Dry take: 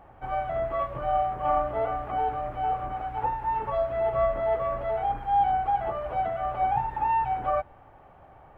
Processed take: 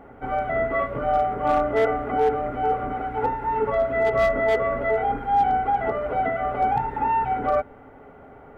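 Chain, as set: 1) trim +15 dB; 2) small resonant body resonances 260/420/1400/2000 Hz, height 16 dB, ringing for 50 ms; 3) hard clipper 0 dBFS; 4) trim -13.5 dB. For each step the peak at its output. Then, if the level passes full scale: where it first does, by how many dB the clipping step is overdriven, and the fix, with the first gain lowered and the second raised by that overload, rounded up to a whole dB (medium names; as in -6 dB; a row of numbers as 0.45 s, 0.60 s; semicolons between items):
+1.5 dBFS, +5.0 dBFS, 0.0 dBFS, -13.5 dBFS; step 1, 5.0 dB; step 1 +10 dB, step 4 -8.5 dB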